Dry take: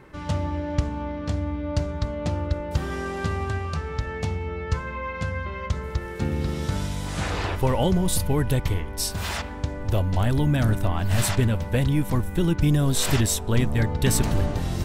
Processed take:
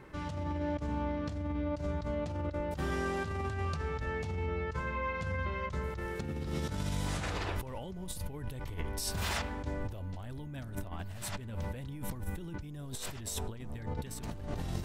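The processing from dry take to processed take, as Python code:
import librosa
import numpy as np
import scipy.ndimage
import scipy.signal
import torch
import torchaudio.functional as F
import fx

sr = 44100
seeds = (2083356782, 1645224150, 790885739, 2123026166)

y = fx.over_compress(x, sr, threshold_db=-29.0, ratio=-1.0)
y = y * librosa.db_to_amplitude(-8.0)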